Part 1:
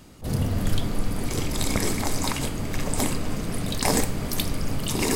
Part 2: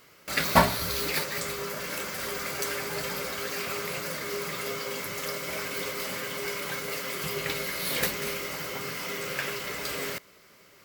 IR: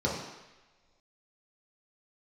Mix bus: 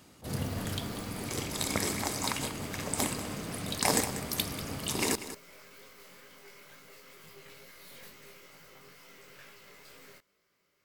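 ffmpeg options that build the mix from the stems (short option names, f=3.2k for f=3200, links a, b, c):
-filter_complex "[0:a]highpass=76,lowshelf=f=410:g=-5.5,aeval=exprs='0.422*(cos(1*acos(clip(val(0)/0.422,-1,1)))-cos(1*PI/2))+0.0188*(cos(7*acos(clip(val(0)/0.422,-1,1)))-cos(7*PI/2))':c=same,volume=-1.5dB,asplit=2[a][b];[b]volume=-13dB[c];[1:a]aeval=exprs='(tanh(31.6*val(0)+0.6)-tanh(0.6))/31.6':c=same,flanger=delay=18:depth=3.8:speed=2.2,volume=-13.5dB[d];[c]aecho=0:1:191:1[e];[a][d][e]amix=inputs=3:normalize=0"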